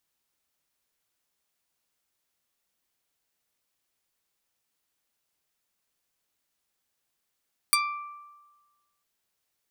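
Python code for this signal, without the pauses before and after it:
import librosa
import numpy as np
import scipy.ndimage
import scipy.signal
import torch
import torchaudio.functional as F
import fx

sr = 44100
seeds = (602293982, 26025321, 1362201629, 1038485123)

y = fx.pluck(sr, length_s=1.3, note=86, decay_s=1.32, pick=0.31, brightness='medium')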